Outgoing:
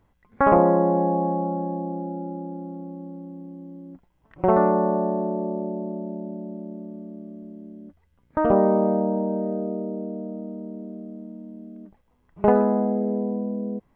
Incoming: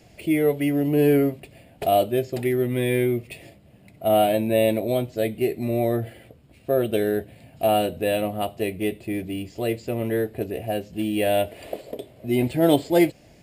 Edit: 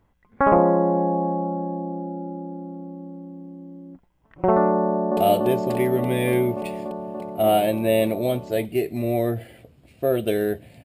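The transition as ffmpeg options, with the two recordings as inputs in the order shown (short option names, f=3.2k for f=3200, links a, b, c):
-filter_complex "[0:a]apad=whole_dur=10.84,atrim=end=10.84,atrim=end=5.172[a];[1:a]atrim=start=1.828:end=7.5[b];[a][b]acrossfade=d=0.004:c1=hsin:c2=hsin,asplit=2[c][d];[d]afade=t=in:st=4.82:d=0.01,afade=t=out:st=5.17:d=0.01,aecho=0:1:290|580|870|1160|1450|1740|2030|2320|2610|2900|3190|3480:0.891251|0.757563|0.643929|0.547339|0.465239|0.395453|0.336135|0.285715|0.242857|0.206429|0.175464|0.149145[e];[c][e]amix=inputs=2:normalize=0"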